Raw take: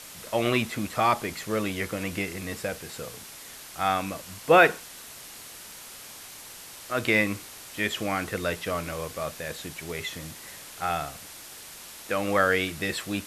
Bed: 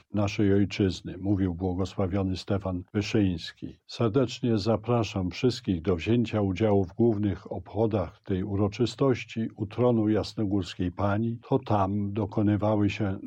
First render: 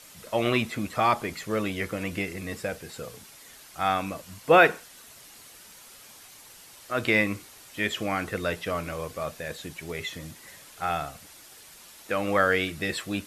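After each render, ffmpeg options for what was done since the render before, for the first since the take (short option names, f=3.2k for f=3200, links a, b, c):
-af "afftdn=nr=7:nf=-44"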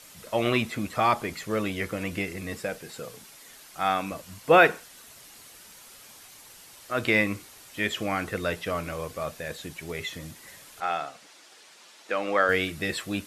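-filter_complex "[0:a]asettb=1/sr,asplit=3[a][b][c];[a]atrim=end=2.584[d];[b]atrim=start=2.58:end=4.12,asetpts=PTS-STARTPTS,afade=t=in:d=0.004:c=qsin,afade=t=out:st=1.536:d=0.004:c=qsin,equalizer=f=74:w=2:g=-14[e];[c]atrim=start=4.116[f];[d][e]acrossfade=d=0.004:c1=hsin:c2=qsin[g];[g][f]acrossfade=d=0.004:c1=qsin:c2=hsin,asettb=1/sr,asplit=3[h][i][j];[h]atrim=end=10.804[k];[i]atrim=start=10.8:end=12.49,asetpts=PTS-STARTPTS,afade=t=in:d=0.004:c=qsin,afade=t=out:st=1.686:d=0.004:c=qsin,highpass=300,lowpass=6.4k[l];[j]atrim=start=12.486[m];[k][l]acrossfade=d=0.004:c1=hsin:c2=qsin[n];[n][m]acrossfade=d=0.004:c1=qsin:c2=hsin"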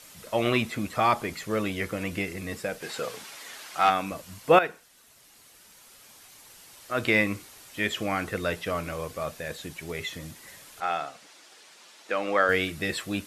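-filter_complex "[0:a]asplit=3[a][b][c];[a]afade=t=out:st=2.81:d=0.02[d];[b]asplit=2[e][f];[f]highpass=f=720:p=1,volume=16dB,asoftclip=type=tanh:threshold=-9.5dB[g];[e][g]amix=inputs=2:normalize=0,lowpass=f=3.4k:p=1,volume=-6dB,afade=t=in:st=2.81:d=0.02,afade=t=out:st=3.89:d=0.02[h];[c]afade=t=in:st=3.89:d=0.02[i];[d][h][i]amix=inputs=3:normalize=0,asplit=2[j][k];[j]atrim=end=4.59,asetpts=PTS-STARTPTS,afade=t=out:st=4.586:d=0.004:c=hsin:silence=0.251189[l];[k]atrim=start=4.59,asetpts=PTS-STARTPTS,afade=t=in:d=2.44:silence=0.251189[m];[l][m]concat=n=2:v=0:a=1"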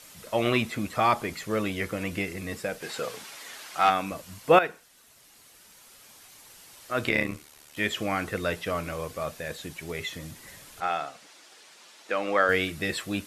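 -filter_complex "[0:a]asettb=1/sr,asplit=3[a][b][c];[a]atrim=end=7.094[d];[b]atrim=start=7.09:end=7.77,asetpts=PTS-STARTPTS,afade=t=in:d=0.004:c=qsin,afade=t=out:st=0.676:d=0.004:c=qsin,tremolo=f=74:d=0.824[e];[c]atrim=start=7.766[f];[d][e]acrossfade=d=0.004:c1=hsin:c2=qsin[g];[g][f]acrossfade=d=0.004:c1=qsin:c2=hsin,asettb=1/sr,asplit=3[h][i][j];[h]atrim=end=10.324[k];[i]atrim=start=10.32:end=10.88,asetpts=PTS-STARTPTS,afade=t=in:d=0.004:c=qsin,afade=t=out:st=0.556:d=0.004:c=qsin,lowshelf=f=220:g=7.5[l];[j]atrim=start=10.876[m];[k][l]acrossfade=d=0.004:c1=hsin:c2=qsin[n];[n][m]acrossfade=d=0.004:c1=qsin:c2=hsin"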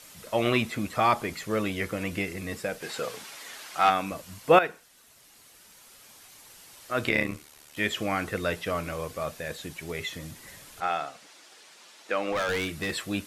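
-filter_complex "[0:a]asettb=1/sr,asplit=3[a][b][c];[a]atrim=end=12.324[d];[b]atrim=start=12.32:end=12.94,asetpts=PTS-STARTPTS,afade=t=in:d=0.004:c=qsin,afade=t=out:st=0.616:d=0.004:c=qsin,asoftclip=type=hard:threshold=-25dB[e];[c]atrim=start=12.936[f];[d][e]acrossfade=d=0.004:c1=hsin:c2=qsin[g];[g][f]acrossfade=d=0.004:c1=qsin:c2=hsin"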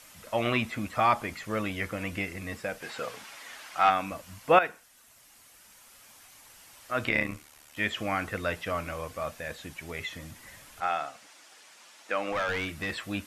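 -filter_complex "[0:a]acrossover=split=5000[a][b];[b]acompressor=threshold=-51dB:ratio=4:attack=1:release=60[c];[a][c]amix=inputs=2:normalize=0,equalizer=f=160:t=o:w=0.67:g=-5,equalizer=f=400:t=o:w=0.67:g=-7,equalizer=f=4k:t=o:w=0.67:g=-4"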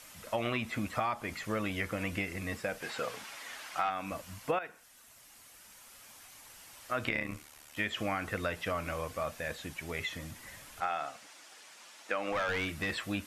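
-af "acompressor=threshold=-29dB:ratio=8"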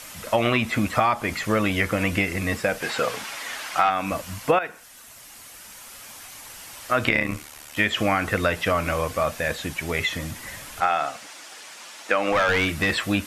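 -af "volume=12dB"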